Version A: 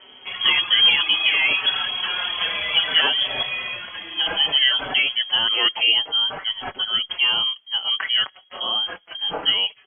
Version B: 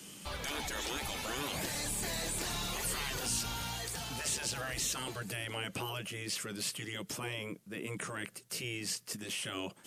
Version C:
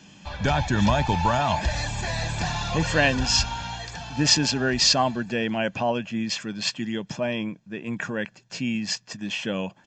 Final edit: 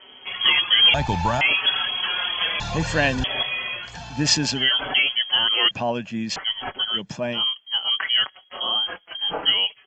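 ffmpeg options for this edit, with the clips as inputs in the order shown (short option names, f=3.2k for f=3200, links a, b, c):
-filter_complex "[2:a]asplit=5[a][b][c][d][e];[0:a]asplit=6[f][g][h][i][j][k];[f]atrim=end=0.942[l];[a]atrim=start=0.938:end=1.412[m];[g]atrim=start=1.408:end=2.602[n];[b]atrim=start=2.598:end=3.242[o];[h]atrim=start=3.238:end=3.98[p];[c]atrim=start=3.82:end=4.7[q];[i]atrim=start=4.54:end=5.712[r];[d]atrim=start=5.708:end=6.362[s];[j]atrim=start=6.358:end=7.02[t];[e]atrim=start=6.92:end=7.42[u];[k]atrim=start=7.32[v];[l][m]acrossfade=d=0.004:c1=hsin:c2=hsin[w];[w][n]acrossfade=d=0.004:c1=hsin:c2=hsin[x];[x][o]acrossfade=d=0.004:c1=hsin:c2=hsin[y];[y][p]acrossfade=d=0.004:c1=hsin:c2=hsin[z];[z][q]acrossfade=d=0.16:c1=tri:c2=tri[aa];[aa][r]acrossfade=d=0.16:c1=tri:c2=tri[ab];[ab][s]acrossfade=d=0.004:c1=hsin:c2=hsin[ac];[ac][t]acrossfade=d=0.004:c1=hsin:c2=hsin[ad];[ad][u]acrossfade=d=0.1:c1=tri:c2=tri[ae];[ae][v]acrossfade=d=0.1:c1=tri:c2=tri"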